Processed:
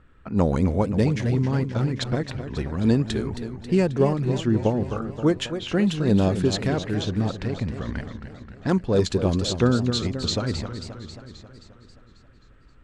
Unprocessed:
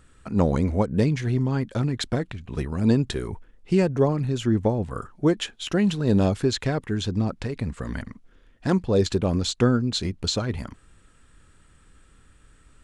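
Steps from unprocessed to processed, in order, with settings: low-pass opened by the level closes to 2300 Hz, open at -17.5 dBFS; warbling echo 0.267 s, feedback 61%, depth 149 cents, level -10 dB

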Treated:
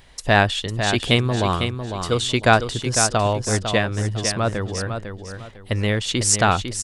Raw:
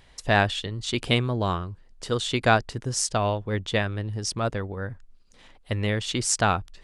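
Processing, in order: high shelf 9100 Hz +5.5 dB; feedback echo 0.502 s, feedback 28%, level -7.5 dB; gain +4.5 dB

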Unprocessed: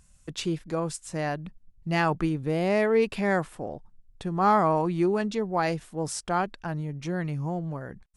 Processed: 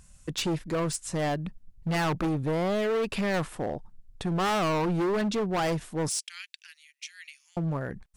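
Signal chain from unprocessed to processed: 2.27–3.34 compressor, threshold -23 dBFS, peak gain reduction 5.5 dB; 6.09–7.57 steep high-pass 2200 Hz 36 dB/oct; hard clip -29 dBFS, distortion -5 dB; gain +4.5 dB

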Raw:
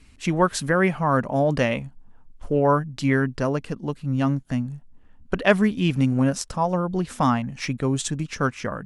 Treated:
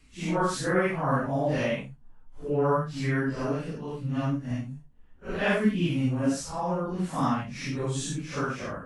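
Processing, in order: phase scrambler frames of 0.2 s; gain -5 dB

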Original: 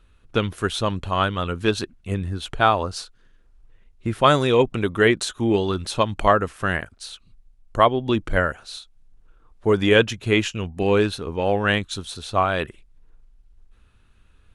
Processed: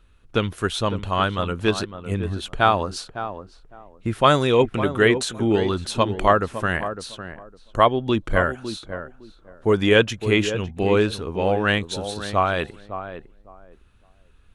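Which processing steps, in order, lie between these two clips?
tape echo 0.557 s, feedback 22%, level -8.5 dB, low-pass 1000 Hz

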